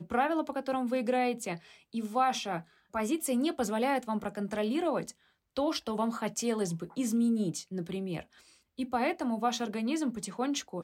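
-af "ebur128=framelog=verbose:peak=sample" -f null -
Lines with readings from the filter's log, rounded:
Integrated loudness:
  I:         -32.1 LUFS
  Threshold: -42.4 LUFS
Loudness range:
  LRA:         1.6 LU
  Threshold: -52.4 LUFS
  LRA low:   -33.2 LUFS
  LRA high:  -31.7 LUFS
Sample peak:
  Peak:      -15.0 dBFS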